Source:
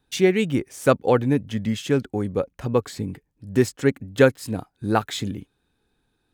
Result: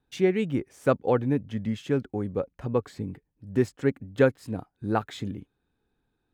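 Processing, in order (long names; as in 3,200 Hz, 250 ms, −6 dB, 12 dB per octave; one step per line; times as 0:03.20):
high-shelf EQ 3,200 Hz −11.5 dB
level −4.5 dB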